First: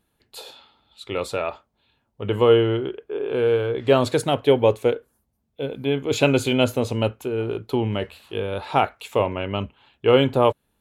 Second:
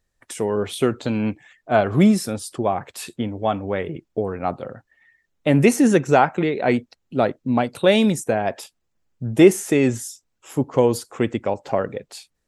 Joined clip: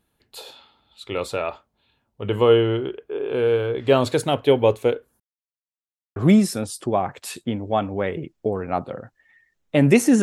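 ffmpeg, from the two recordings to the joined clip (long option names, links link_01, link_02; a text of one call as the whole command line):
ffmpeg -i cue0.wav -i cue1.wav -filter_complex "[0:a]apad=whole_dur=10.22,atrim=end=10.22,asplit=2[link_01][link_02];[link_01]atrim=end=5.2,asetpts=PTS-STARTPTS,afade=type=out:start_time=5.196:duration=0.004:curve=hsin[link_03];[link_02]atrim=start=5.2:end=6.16,asetpts=PTS-STARTPTS,volume=0[link_04];[1:a]atrim=start=1.88:end=5.94,asetpts=PTS-STARTPTS,afade=type=in:duration=0.004:curve=hsin[link_05];[link_03][link_04][link_05]concat=n=3:v=0:a=1" out.wav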